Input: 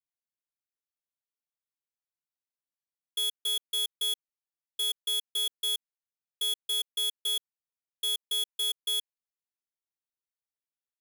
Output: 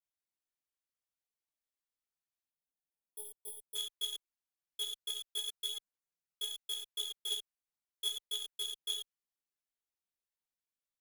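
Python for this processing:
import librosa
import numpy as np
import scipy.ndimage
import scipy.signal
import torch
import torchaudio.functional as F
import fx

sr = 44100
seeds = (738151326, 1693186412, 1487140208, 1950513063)

y = fx.chorus_voices(x, sr, voices=6, hz=1.4, base_ms=22, depth_ms=3.1, mix_pct=60)
y = fx.spec_box(y, sr, start_s=2.5, length_s=1.26, low_hz=980.0, high_hz=8200.0, gain_db=-24)
y = fx.transformer_sat(y, sr, knee_hz=1300.0)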